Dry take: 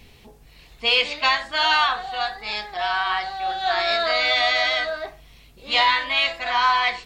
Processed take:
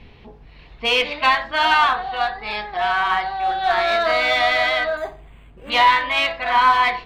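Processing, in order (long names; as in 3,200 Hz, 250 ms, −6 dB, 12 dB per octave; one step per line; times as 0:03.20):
high-frequency loss of the air 310 metres
in parallel at −3 dB: asymmetric clip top −25 dBFS
on the sum: parametric band 980 Hz +2.5 dB 0.21 octaves
hum removal 67.42 Hz, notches 15
0:04.97–0:05.70: linearly interpolated sample-rate reduction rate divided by 8×
level +1.5 dB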